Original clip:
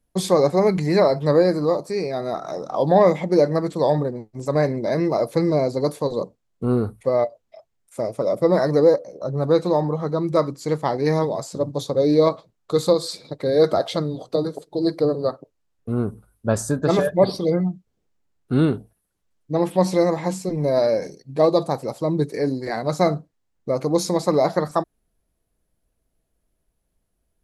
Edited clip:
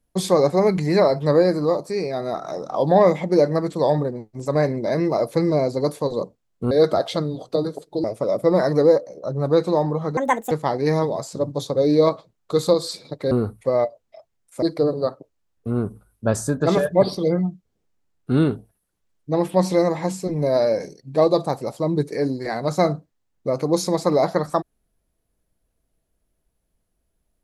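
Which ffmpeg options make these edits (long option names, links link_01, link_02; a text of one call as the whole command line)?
ffmpeg -i in.wav -filter_complex "[0:a]asplit=7[link_01][link_02][link_03][link_04][link_05][link_06][link_07];[link_01]atrim=end=6.712[link_08];[link_02]atrim=start=13.508:end=14.842[link_09];[link_03]atrim=start=8.018:end=10.154[link_10];[link_04]atrim=start=10.15:end=10.71,asetpts=PTS-STARTPTS,asetrate=71883,aresample=44100[link_11];[link_05]atrim=start=10.706:end=13.512[link_12];[link_06]atrim=start=6.708:end=8.022[link_13];[link_07]atrim=start=14.838[link_14];[link_08][link_09]acrossfade=duration=0.004:curve1=hsin:curve2=hsin[link_15];[link_15][link_10]acrossfade=duration=0.004:curve1=hsin:curve2=hsin[link_16];[link_16][link_11]acrossfade=duration=0.004:curve1=hsin:curve2=hsin[link_17];[link_17][link_12]acrossfade=duration=0.004:curve1=hsin:curve2=hsin[link_18];[link_18][link_13]acrossfade=duration=0.004:curve1=hsin:curve2=hsin[link_19];[link_19][link_14]acrossfade=duration=0.004:curve1=hsin:curve2=hsin" out.wav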